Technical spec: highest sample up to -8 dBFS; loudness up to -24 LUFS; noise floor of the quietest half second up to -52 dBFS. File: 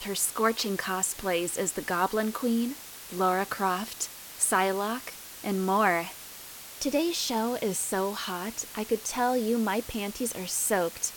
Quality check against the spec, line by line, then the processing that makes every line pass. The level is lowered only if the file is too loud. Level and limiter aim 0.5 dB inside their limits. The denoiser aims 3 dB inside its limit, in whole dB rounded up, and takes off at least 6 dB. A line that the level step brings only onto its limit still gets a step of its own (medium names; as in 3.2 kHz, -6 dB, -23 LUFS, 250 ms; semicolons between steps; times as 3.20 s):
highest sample -10.5 dBFS: pass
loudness -28.5 LUFS: pass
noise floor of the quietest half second -44 dBFS: fail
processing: noise reduction 11 dB, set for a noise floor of -44 dBFS